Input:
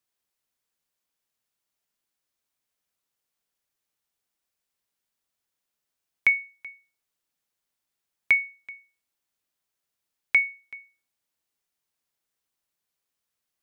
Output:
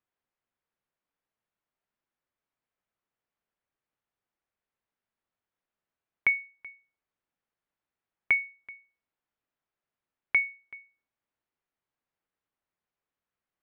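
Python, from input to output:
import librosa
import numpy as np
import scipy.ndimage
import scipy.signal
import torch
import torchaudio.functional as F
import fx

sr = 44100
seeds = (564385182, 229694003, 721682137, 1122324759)

y = scipy.signal.sosfilt(scipy.signal.butter(2, 2000.0, 'lowpass', fs=sr, output='sos'), x)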